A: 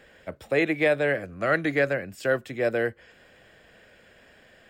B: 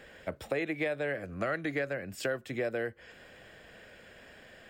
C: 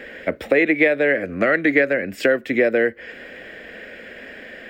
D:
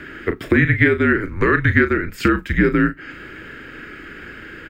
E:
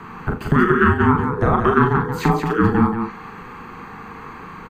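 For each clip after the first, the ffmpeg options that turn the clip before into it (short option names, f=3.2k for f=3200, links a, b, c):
-af "acompressor=threshold=-32dB:ratio=5,volume=1.5dB"
-af "equalizer=f=125:t=o:w=1:g=-7,equalizer=f=250:t=o:w=1:g=10,equalizer=f=500:t=o:w=1:g=7,equalizer=f=1k:t=o:w=1:g=-4,equalizer=f=2k:t=o:w=1:g=12,equalizer=f=8k:t=o:w=1:g=-5,volume=7.5dB"
-filter_complex "[0:a]afreqshift=-190,asplit=2[a][b];[b]adelay=37,volume=-10dB[c];[a][c]amix=inputs=2:normalize=0,volume=1.5dB"
-af "aecho=1:1:40.82|180.8:0.562|0.501,afreqshift=-500,volume=-1.5dB"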